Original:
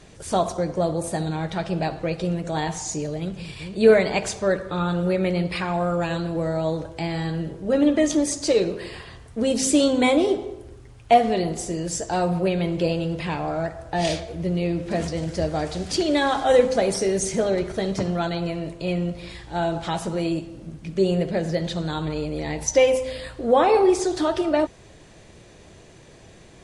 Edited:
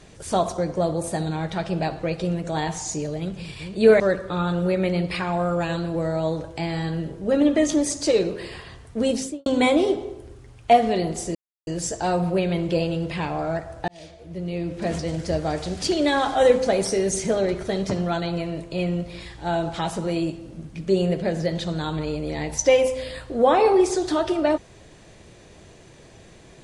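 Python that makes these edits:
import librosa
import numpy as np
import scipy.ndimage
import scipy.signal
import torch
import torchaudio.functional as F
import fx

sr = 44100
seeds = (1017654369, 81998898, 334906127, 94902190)

y = fx.studio_fade_out(x, sr, start_s=9.48, length_s=0.39)
y = fx.edit(y, sr, fx.cut(start_s=4.0, length_s=0.41),
    fx.insert_silence(at_s=11.76, length_s=0.32),
    fx.fade_in_span(start_s=13.97, length_s=1.11), tone=tone)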